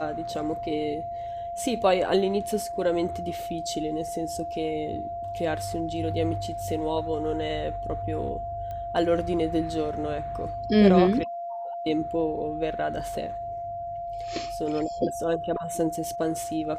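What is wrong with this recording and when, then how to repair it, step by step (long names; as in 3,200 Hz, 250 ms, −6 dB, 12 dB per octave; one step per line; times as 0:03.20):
whistle 690 Hz −31 dBFS
0:08.71: click −25 dBFS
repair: click removal
notch filter 690 Hz, Q 30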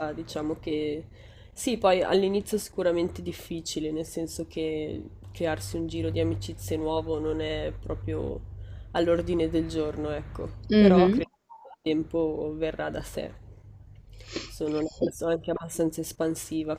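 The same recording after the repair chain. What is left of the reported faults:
none of them is left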